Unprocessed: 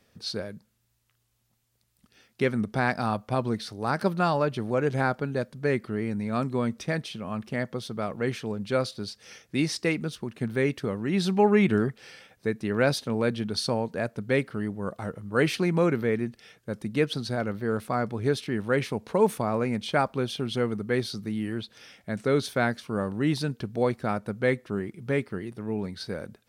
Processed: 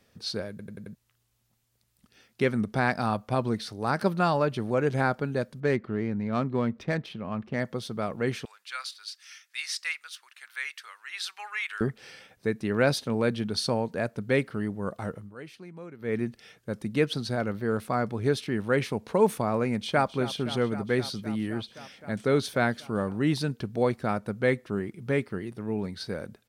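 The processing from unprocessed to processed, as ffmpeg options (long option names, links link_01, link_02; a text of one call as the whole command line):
ffmpeg -i in.wav -filter_complex "[0:a]asettb=1/sr,asplit=3[link_01][link_02][link_03];[link_01]atrim=end=5.604[link_04];[link_02]atrim=start=5.6:end=7.6,asetpts=PTS-STARTPTS,afade=type=in:duration=0.004:curve=qsin,afade=type=out:start_time=1.996:duration=0.004:curve=qsin,adynamicsmooth=sensitivity=3.5:basefreq=2400[link_05];[link_03]atrim=start=7.596[link_06];[link_04][link_05]acrossfade=duration=0.004:curve1=hsin:curve2=qsin[link_07];[link_07][link_06]acrossfade=duration=0.004:curve1=qsin:curve2=hsin,asettb=1/sr,asplit=3[link_08][link_09][link_10];[link_08]atrim=end=8.454[link_11];[link_09]atrim=start=8.45:end=11.81,asetpts=PTS-STARTPTS,afade=type=in:duration=0.004:curve=qsin,afade=type=out:start_time=3.356:duration=0.004:curve=qsin,highpass=frequency=1300:width=0.5412,highpass=frequency=1300:width=1.3066[link_12];[link_10]atrim=start=11.806[link_13];[link_11][link_12]acrossfade=duration=0.004:curve1=hsin:curve2=qsin[link_14];[link_14][link_13]acrossfade=duration=0.004:curve1=qsin:curve2=hsin,asplit=2[link_15][link_16];[link_16]afade=type=in:start_time=19.69:duration=0.01,afade=type=out:start_time=20.11:duration=0.01,aecho=0:1:260|520|780|1040|1300|1560|1820|2080|2340|2600|2860|3120:0.188365|0.16011|0.136094|0.11568|0.0983277|0.0835785|0.0710417|0.0603855|0.0513277|0.0436285|0.0370842|0.0315216[link_17];[link_15][link_17]amix=inputs=2:normalize=0,asplit=8[link_18][link_19][link_20][link_21][link_22][link_23][link_24][link_25];[link_18]atrim=end=0.592[link_26];[link_19]atrim=start=0.498:end=0.592[link_27];[link_20]atrim=start=0.498:end=0.592[link_28];[link_21]atrim=start=0.498:end=0.592[link_29];[link_22]atrim=start=0.498:end=0.592[link_30];[link_23]atrim=start=0.948:end=15.35,asetpts=PTS-STARTPTS,afade=type=out:start_time=14.212:duration=0.19:silence=0.1[link_31];[link_24]atrim=start=15.35:end=15.99,asetpts=PTS-STARTPTS,volume=-20dB[link_32];[link_25]atrim=start=15.99,asetpts=PTS-STARTPTS,afade=type=in:duration=0.19:silence=0.1[link_33];[link_26][link_27]acrossfade=duration=0.004:curve1=hsin:curve2=hsin[link_34];[link_34][link_28]acrossfade=duration=0.004:curve1=hsin:curve2=hsin[link_35];[link_35][link_29]acrossfade=duration=0.004:curve1=hsin:curve2=hsin[link_36];[link_36][link_30]acrossfade=duration=0.004:curve1=hsin:curve2=hsin[link_37];[link_31][link_32][link_33]concat=n=3:v=0:a=1[link_38];[link_37][link_38]acrossfade=duration=0.004:curve1=hsin:curve2=hsin" out.wav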